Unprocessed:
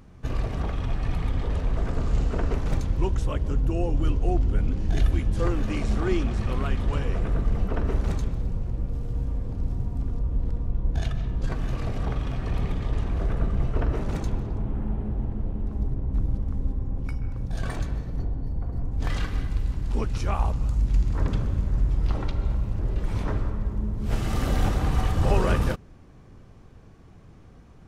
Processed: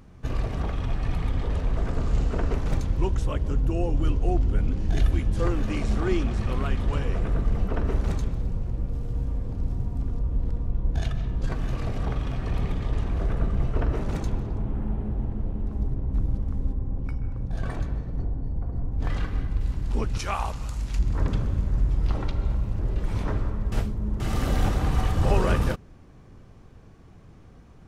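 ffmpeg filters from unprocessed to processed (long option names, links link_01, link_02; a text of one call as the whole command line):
ffmpeg -i in.wav -filter_complex "[0:a]asettb=1/sr,asplit=3[link_01][link_02][link_03];[link_01]atrim=end=16.734[link_04];[link_02]atrim=start=16.73:end=19.61,asetpts=PTS-STARTPTS,afade=type=in:duration=0.004:curve=qsin,afade=type=out:start_time=2.876:duration=0.004:curve=qsin,highshelf=frequency=2700:gain=-9.5[link_05];[link_03]atrim=start=19.606[link_06];[link_04][link_05]acrossfade=duration=0.004:curve1=hsin:curve2=qsin[link_07];[link_07][link_06]acrossfade=duration=0.004:curve1=qsin:curve2=hsin,asettb=1/sr,asplit=3[link_08][link_09][link_10];[link_08]atrim=end=20.194[link_11];[link_09]atrim=start=20.19:end=20.99,asetpts=PTS-STARTPTS,afade=type=in:duration=0.004:curve=qsin,afade=type=out:start_time=0.796:duration=0.004:curve=qsin,tiltshelf=frequency=700:gain=-7[link_12];[link_10]atrim=start=20.986[link_13];[link_11][link_12]acrossfade=duration=0.004:curve1=hsin:curve2=qsin[link_14];[link_14][link_13]acrossfade=duration=0.004:curve1=qsin:curve2=hsin,asplit=3[link_15][link_16][link_17];[link_15]atrim=end=23.722[link_18];[link_16]atrim=start=23.718:end=24.202,asetpts=PTS-STARTPTS,areverse[link_19];[link_17]atrim=start=24.198[link_20];[link_18][link_19]acrossfade=duration=0.004:curve1=hsin:curve2=hsin[link_21];[link_21][link_20]acrossfade=duration=0.004:curve1=hsin:curve2=hsin" out.wav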